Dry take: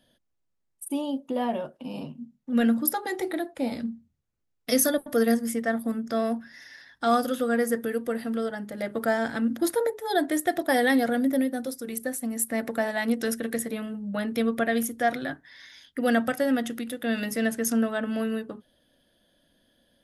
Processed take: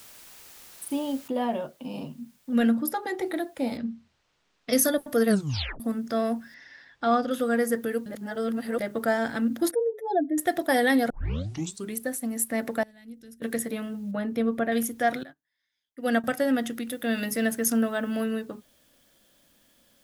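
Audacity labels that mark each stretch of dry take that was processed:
1.280000	1.280000	noise floor change −49 dB −65 dB
2.710000	3.260000	high-shelf EQ 4,800 Hz −7.5 dB
3.770000	4.730000	high-frequency loss of the air 150 metres
5.280000	5.280000	tape stop 0.52 s
6.540000	7.310000	high-frequency loss of the air 150 metres
8.060000	8.800000	reverse
9.710000	10.380000	expanding power law on the bin magnitudes exponent 2.3
11.100000	11.100000	tape start 0.85 s
12.830000	13.420000	guitar amp tone stack bass-middle-treble 10-0-1
14.110000	14.720000	high-shelf EQ 2,100 Hz −11 dB
15.230000	16.240000	expander for the loud parts 2.5 to 1, over −41 dBFS
16.900000	18.250000	high-shelf EQ 11,000 Hz +8 dB

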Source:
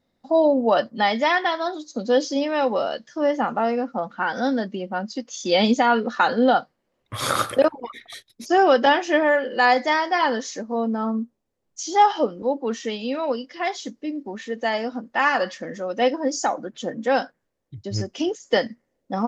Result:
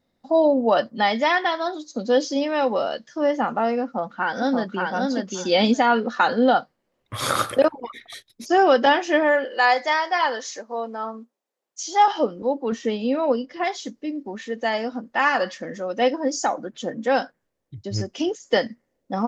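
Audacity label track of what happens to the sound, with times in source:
3.830000	4.910000	delay throw 580 ms, feedback 15%, level −2.5 dB
9.450000	12.080000	high-pass filter 510 Hz
12.720000	13.640000	tilt shelving filter lows +5 dB, about 1,400 Hz

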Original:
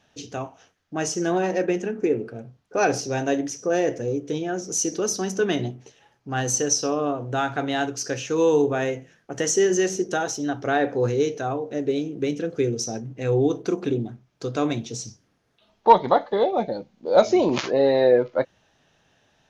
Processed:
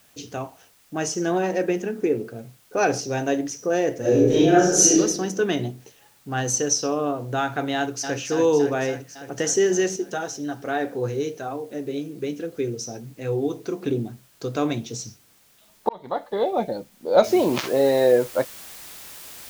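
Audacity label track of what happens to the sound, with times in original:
3.990000	4.970000	thrown reverb, RT60 0.92 s, DRR −11 dB
7.750000	8.170000	delay throw 280 ms, feedback 75%, level −7 dB
9.960000	13.860000	flanger 1.2 Hz, delay 2.1 ms, depth 5.8 ms, regen −49%
15.890000	16.570000	fade in
17.240000	17.240000	noise floor change −58 dB −41 dB

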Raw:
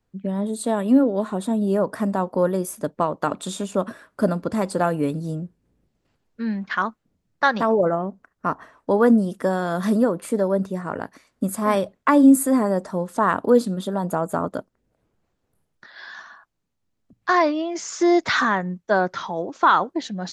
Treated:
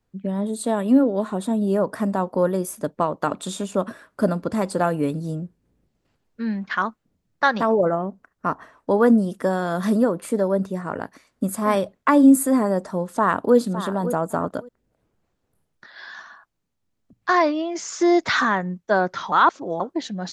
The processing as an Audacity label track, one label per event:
13.060000	13.560000	delay throw 560 ms, feedback 15%, level −11.5 dB
19.320000	19.800000	reverse

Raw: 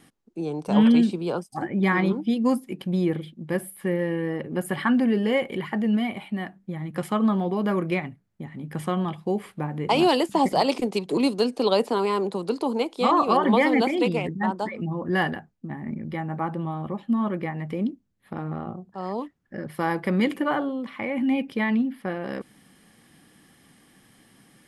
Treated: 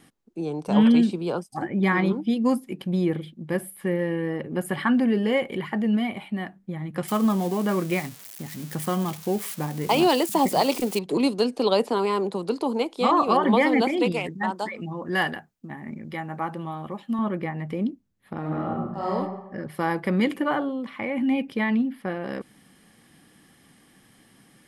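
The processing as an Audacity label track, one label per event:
7.080000	10.990000	spike at every zero crossing of −26 dBFS
14.120000	17.190000	spectral tilt +2 dB per octave
18.390000	19.130000	thrown reverb, RT60 1 s, DRR −4.5 dB

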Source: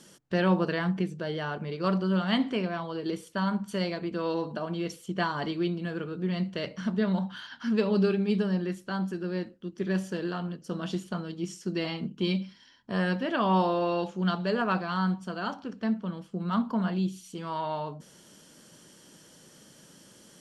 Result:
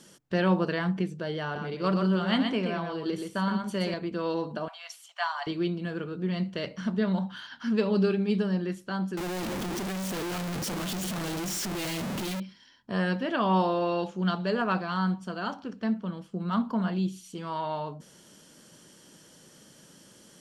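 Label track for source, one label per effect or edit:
1.430000	3.940000	single-tap delay 124 ms −5 dB
4.680000	5.470000	Butterworth high-pass 660 Hz 72 dB per octave
9.170000	12.400000	sign of each sample alone

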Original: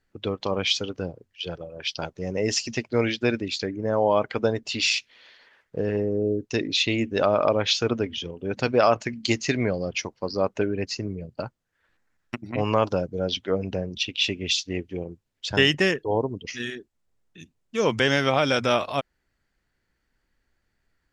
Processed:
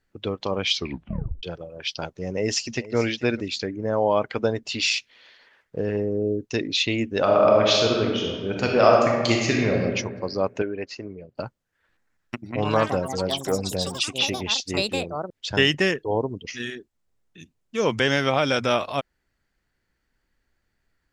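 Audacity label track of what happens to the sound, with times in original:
0.710000	0.710000	tape stop 0.72 s
2.310000	2.960000	delay throw 440 ms, feedback 10%, level −16.5 dB
7.190000	9.750000	thrown reverb, RT60 1.6 s, DRR −1 dB
10.620000	11.360000	bass and treble bass −11 dB, treble −12 dB
12.540000	16.330000	delay with pitch and tempo change per echo 84 ms, each echo +6 semitones, echoes 3, each echo −6 dB

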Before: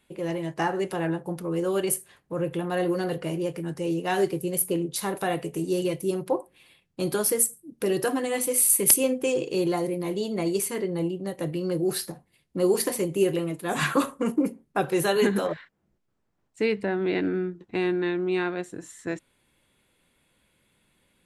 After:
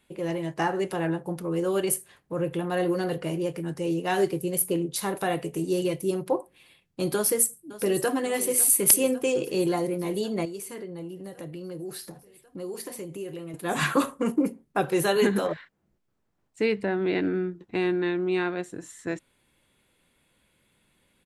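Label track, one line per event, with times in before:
7.150000	8.140000	delay throw 550 ms, feedback 75%, level −16 dB
10.450000	13.540000	downward compressor 2.5 to 1, threshold −39 dBFS

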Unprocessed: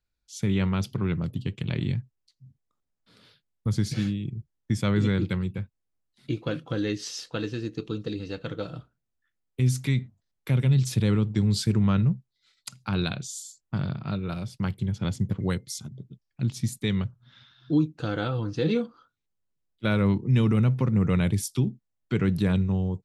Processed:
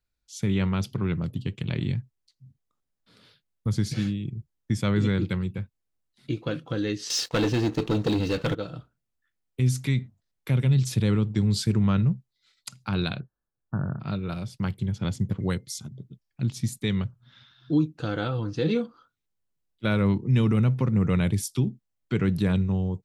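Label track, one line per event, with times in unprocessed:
7.100000	8.550000	leveller curve on the samples passes 3
13.200000	14.000000	linear-phase brick-wall low-pass 1,800 Hz

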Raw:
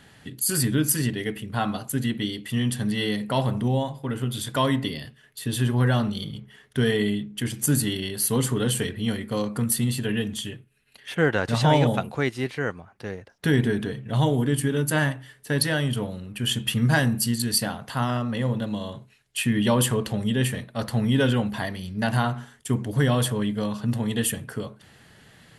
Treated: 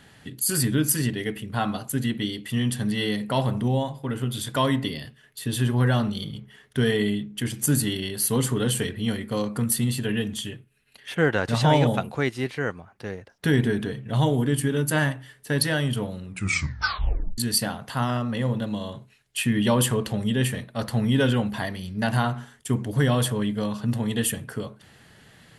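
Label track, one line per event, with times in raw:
16.240000	16.240000	tape stop 1.14 s

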